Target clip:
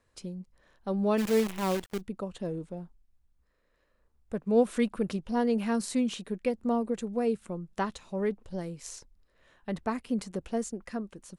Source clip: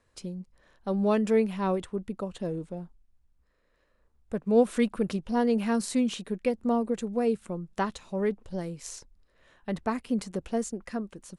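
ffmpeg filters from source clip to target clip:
-filter_complex "[0:a]asplit=3[a][b][c];[a]afade=t=out:st=1.17:d=0.02[d];[b]acrusher=bits=6:dc=4:mix=0:aa=0.000001,afade=t=in:st=1.17:d=0.02,afade=t=out:st=2:d=0.02[e];[c]afade=t=in:st=2:d=0.02[f];[d][e][f]amix=inputs=3:normalize=0,volume=-2dB"

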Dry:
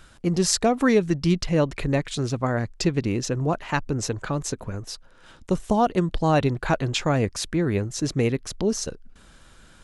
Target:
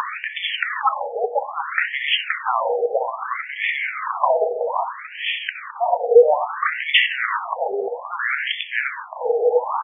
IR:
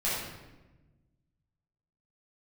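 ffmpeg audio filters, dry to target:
-filter_complex "[0:a]aresample=11025,aresample=44100,acompressor=mode=upward:threshold=-28dB:ratio=2.5,afreqshift=-500,highpass=110,aecho=1:1:522:0.447,asplit=2[a][b];[1:a]atrim=start_sample=2205,lowshelf=f=410:g=-8[c];[b][c]afir=irnorm=-1:irlink=0,volume=-12.5dB[d];[a][d]amix=inputs=2:normalize=0,alimiter=level_in=22dB:limit=-1dB:release=50:level=0:latency=1,afftfilt=real='re*between(b*sr/1024,580*pow(2500/580,0.5+0.5*sin(2*PI*0.61*pts/sr))/1.41,580*pow(2500/580,0.5+0.5*sin(2*PI*0.61*pts/sr))*1.41)':imag='im*between(b*sr/1024,580*pow(2500/580,0.5+0.5*sin(2*PI*0.61*pts/sr))/1.41,580*pow(2500/580,0.5+0.5*sin(2*PI*0.61*pts/sr))*1.41)':win_size=1024:overlap=0.75"

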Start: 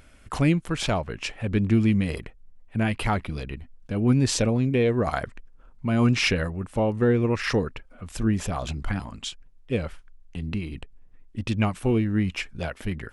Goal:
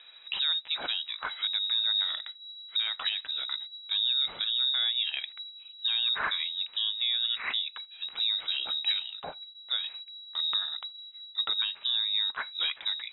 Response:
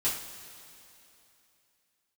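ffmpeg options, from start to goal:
-filter_complex "[0:a]lowpass=f=3.3k:t=q:w=0.5098,lowpass=f=3.3k:t=q:w=0.6013,lowpass=f=3.3k:t=q:w=0.9,lowpass=f=3.3k:t=q:w=2.563,afreqshift=-3900,asplit=2[a][b];[1:a]atrim=start_sample=2205,atrim=end_sample=3969[c];[b][c]afir=irnorm=-1:irlink=0,volume=-26.5dB[d];[a][d]amix=inputs=2:normalize=0,alimiter=limit=-19dB:level=0:latency=1:release=432"

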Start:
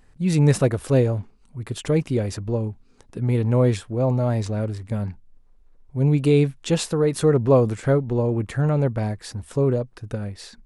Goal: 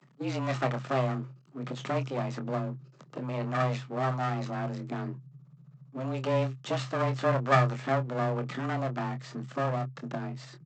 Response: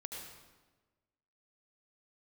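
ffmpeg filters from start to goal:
-filter_complex "[0:a]acrossover=split=3500[a][b];[b]acompressor=threshold=-50dB:ratio=4:attack=1:release=60[c];[a][c]amix=inputs=2:normalize=0,equalizer=f=1.1k:w=7.5:g=13,acrossover=split=500[d][e];[d]acompressor=threshold=-29dB:ratio=6[f];[f][e]amix=inputs=2:normalize=0,aresample=16000,aeval=exprs='max(val(0),0)':c=same,aresample=44100,afreqshift=130,asplit=2[g][h];[h]adelay=25,volume=-9dB[i];[g][i]amix=inputs=2:normalize=0"

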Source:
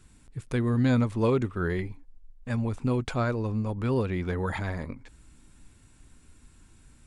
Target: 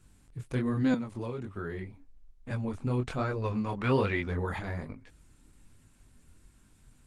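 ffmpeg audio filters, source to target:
-filter_complex "[0:a]asettb=1/sr,asplit=3[a][b][c];[a]atrim=end=3.424[d];[b]atrim=start=3.42:end=4.21,asetpts=PTS-STARTPTS,afade=t=in:d=0.004:c=qsin,afade=t=out:st=0.786:d=0.004:c=qsin,equalizer=f=2.1k:t=o:w=3:g=11.5[e];[c]atrim=start=4.206[f];[d][e]acrossfade=d=0.004:c1=hsin:c2=qsin[g];[g][f]acrossfade=d=0.004:c1=qsin:c2=hsin,flanger=delay=19:depth=6.3:speed=1.2,asettb=1/sr,asplit=3[h][i][j];[h]atrim=end=0.944[k];[i]atrim=start=0.94:end=2.51,asetpts=PTS-STARTPTS,afade=t=in:d=0.004:c=qsin,afade=t=out:st=1.566:d=0.004:c=qsin,acrossover=split=210|2400[l][m][n];[l]acompressor=threshold=-40dB:ratio=4[o];[m]acompressor=threshold=-37dB:ratio=4[p];[n]acompressor=threshold=-57dB:ratio=4[q];[o][p][q]amix=inputs=3:normalize=0[r];[j]atrim=start=2.506[s];[k][r]acrossfade=d=0.004:c1=hsin:c2=qsin[t];[t][s]acrossfade=d=0.004:c1=qsin:c2=hsin" -ar 48000 -c:a libopus -b:a 20k

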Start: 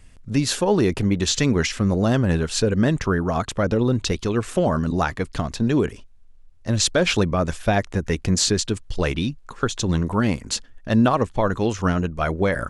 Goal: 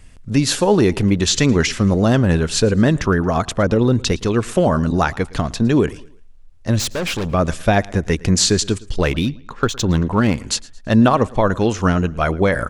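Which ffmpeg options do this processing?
-filter_complex "[0:a]asettb=1/sr,asplit=3[a][b][c];[a]atrim=end=6.794[d];[b]atrim=start=6.79:end=7.34,asetpts=PTS-STARTPTS,afade=t=in:d=0.004:c=qsin,afade=t=out:st=0.546:d=0.004:c=qsin,aeval=exprs='(tanh(15.8*val(0)+0.4)-tanh(0.4))/15.8':c=same[e];[c]atrim=start=7.336[f];[d][e]acrossfade=d=0.004:c1=hsin:c2=qsin[g];[g][f]acrossfade=d=0.004:c1=qsin:c2=hsin,aecho=1:1:112|224|336:0.075|0.0292|0.0114,asettb=1/sr,asplit=3[h][i][j];[h]atrim=end=8.984[k];[i]atrim=start=8.98:end=10.38,asetpts=PTS-STARTPTS,afade=t=in:d=0.004:c=qsin,afade=t=out:st=1.396:d=0.004:c=qsin,adynamicsmooth=sensitivity=7:basefreq=4.3k[l];[j]atrim=start=10.376[m];[k][l]acrossfade=d=0.004:c1=hsin:c2=qsin[n];[n][m]acrossfade=d=0.004:c1=qsin:c2=hsin,volume=4.5dB"

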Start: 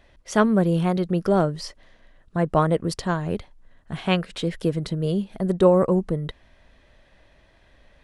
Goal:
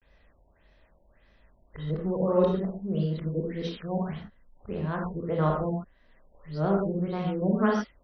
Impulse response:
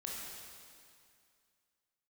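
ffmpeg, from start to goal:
-filter_complex "[0:a]areverse[a];[1:a]atrim=start_sample=2205,atrim=end_sample=6615[b];[a][b]afir=irnorm=-1:irlink=0,afftfilt=real='re*lt(b*sr/1024,940*pow(6300/940,0.5+0.5*sin(2*PI*1.7*pts/sr)))':imag='im*lt(b*sr/1024,940*pow(6300/940,0.5+0.5*sin(2*PI*1.7*pts/sr)))':win_size=1024:overlap=0.75,volume=-4dB"

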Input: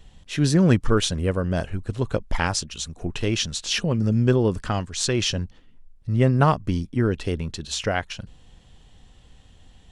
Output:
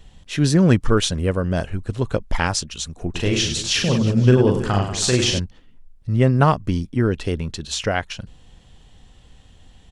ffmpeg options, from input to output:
-filter_complex "[0:a]asplit=3[a][b][c];[a]afade=t=out:st=3.14:d=0.02[d];[b]aecho=1:1:40|100|190|325|527.5:0.631|0.398|0.251|0.158|0.1,afade=t=in:st=3.14:d=0.02,afade=t=out:st=5.38:d=0.02[e];[c]afade=t=in:st=5.38:d=0.02[f];[d][e][f]amix=inputs=3:normalize=0,volume=2.5dB"

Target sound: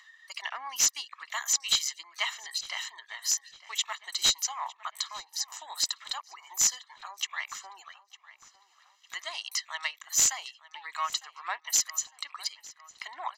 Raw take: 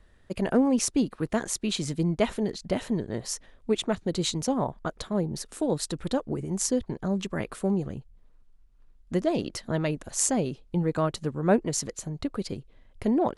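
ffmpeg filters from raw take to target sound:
-filter_complex "[0:a]highpass=f=1.1k:w=0.5412,highpass=f=1.1k:w=1.3066,afftdn=nr=21:nf=-56,highshelf=f=2.8k:g=7.5,aecho=1:1:1:0.81,acompressor=mode=upward:threshold=-37dB:ratio=2.5,aresample=16000,aeval=exprs='0.168*(abs(mod(val(0)/0.168+3,4)-2)-1)':c=same,aresample=44100,asplit=2[a][b];[b]asetrate=88200,aresample=44100,atempo=0.5,volume=-17dB[c];[a][c]amix=inputs=2:normalize=0,asplit=2[d][e];[e]adelay=905,lowpass=f=4.1k:p=1,volume=-17.5dB,asplit=2[f][g];[g]adelay=905,lowpass=f=4.1k:p=1,volume=0.5,asplit=2[h][i];[i]adelay=905,lowpass=f=4.1k:p=1,volume=0.5,asplit=2[j][k];[k]adelay=905,lowpass=f=4.1k:p=1,volume=0.5[l];[d][f][h][j][l]amix=inputs=5:normalize=0"

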